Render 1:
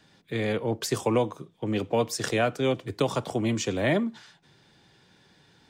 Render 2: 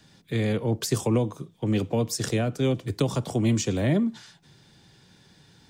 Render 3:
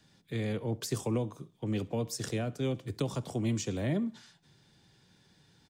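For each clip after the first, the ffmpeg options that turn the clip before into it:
-filter_complex "[0:a]acrossover=split=480[s0][s1];[s1]acompressor=threshold=0.0251:ratio=6[s2];[s0][s2]amix=inputs=2:normalize=0,bass=f=250:g=7,treble=f=4000:g=7"
-af "aecho=1:1:67|134|201:0.0668|0.0294|0.0129,volume=0.398"

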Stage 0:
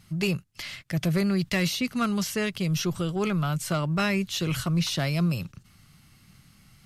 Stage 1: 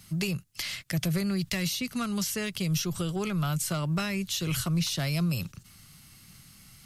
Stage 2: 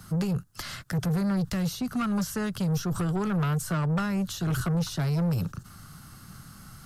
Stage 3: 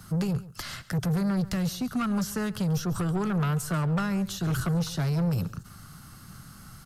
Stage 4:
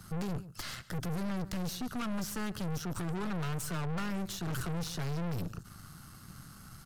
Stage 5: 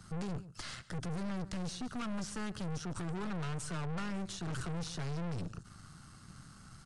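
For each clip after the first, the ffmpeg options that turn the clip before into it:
-filter_complex "[0:a]highshelf=f=4000:g=10.5,acrossover=split=150[s0][s1];[s1]acompressor=threshold=0.0355:ratio=6[s2];[s0][s2]amix=inputs=2:normalize=0"
-filter_complex "[0:a]acrossover=split=240[s0][s1];[s1]acompressor=threshold=0.0178:ratio=5[s2];[s0][s2]amix=inputs=2:normalize=0,highshelf=f=1800:t=q:w=3:g=-7,asoftclip=type=tanh:threshold=0.0266,volume=2.66"
-af "aecho=1:1:138:0.126"
-af "aeval=exprs='(tanh(50.1*val(0)+0.7)-tanh(0.7))/50.1':c=same"
-af "aresample=22050,aresample=44100,volume=0.708"

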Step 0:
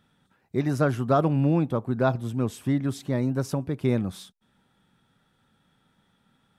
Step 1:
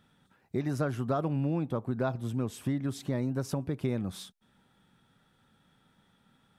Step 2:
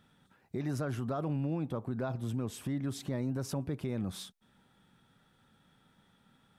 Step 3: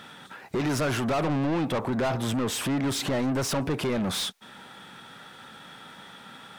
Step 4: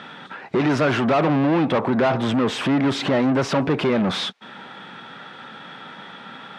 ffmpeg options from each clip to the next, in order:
-af "acompressor=threshold=0.0355:ratio=3"
-af "alimiter=level_in=1.33:limit=0.0631:level=0:latency=1:release=28,volume=0.75"
-filter_complex "[0:a]asplit=2[s0][s1];[s1]highpass=f=720:p=1,volume=17.8,asoftclip=type=tanh:threshold=0.0501[s2];[s0][s2]amix=inputs=2:normalize=0,lowpass=f=5500:p=1,volume=0.501,volume=2"
-af "highpass=140,lowpass=3400,volume=2.51"

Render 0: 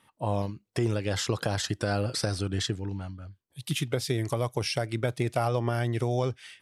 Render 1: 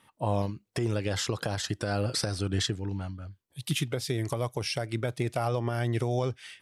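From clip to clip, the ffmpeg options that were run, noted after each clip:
-af "alimiter=limit=0.119:level=0:latency=1:release=306,volume=1.19"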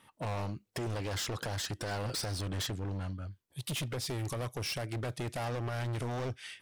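-af "asoftclip=type=hard:threshold=0.0224"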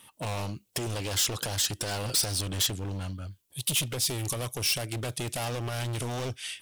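-af "aexciter=amount=2.2:drive=6.3:freq=2600,volume=1.33"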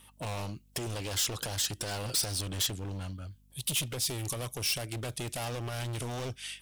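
-af "aeval=exprs='val(0)+0.00126*(sin(2*PI*50*n/s)+sin(2*PI*2*50*n/s)/2+sin(2*PI*3*50*n/s)/3+sin(2*PI*4*50*n/s)/4+sin(2*PI*5*50*n/s)/5)':c=same,volume=0.668"

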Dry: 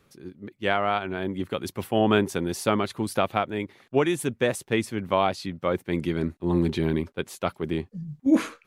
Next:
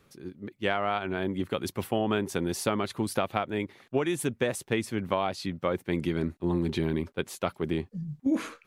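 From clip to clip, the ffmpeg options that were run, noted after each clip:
-af "acompressor=threshold=0.0708:ratio=5"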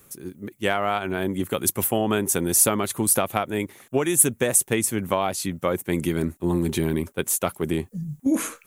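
-af "aexciter=amount=5.8:drive=6.3:freq=6500,volume=1.68"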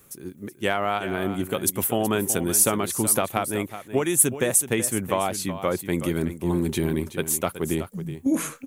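-af "aecho=1:1:374:0.251,volume=0.891"

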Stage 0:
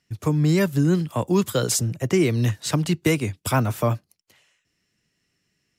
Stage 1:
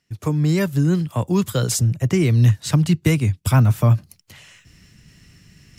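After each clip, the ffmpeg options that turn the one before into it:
-af "asubboost=boost=5:cutoff=180,areverse,acompressor=mode=upward:threshold=0.0251:ratio=2.5,areverse"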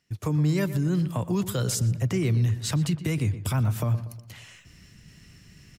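-filter_complex "[0:a]alimiter=limit=0.158:level=0:latency=1:release=57,asplit=2[s0][s1];[s1]adelay=120,lowpass=f=2400:p=1,volume=0.237,asplit=2[s2][s3];[s3]adelay=120,lowpass=f=2400:p=1,volume=0.46,asplit=2[s4][s5];[s5]adelay=120,lowpass=f=2400:p=1,volume=0.46,asplit=2[s6][s7];[s7]adelay=120,lowpass=f=2400:p=1,volume=0.46,asplit=2[s8][s9];[s9]adelay=120,lowpass=f=2400:p=1,volume=0.46[s10];[s2][s4][s6][s8][s10]amix=inputs=5:normalize=0[s11];[s0][s11]amix=inputs=2:normalize=0,volume=0.794"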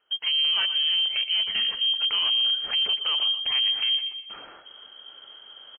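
-af "aresample=11025,asoftclip=type=tanh:threshold=0.0531,aresample=44100,lowpass=f=2800:t=q:w=0.5098,lowpass=f=2800:t=q:w=0.6013,lowpass=f=2800:t=q:w=0.9,lowpass=f=2800:t=q:w=2.563,afreqshift=-3300,volume=1.78"

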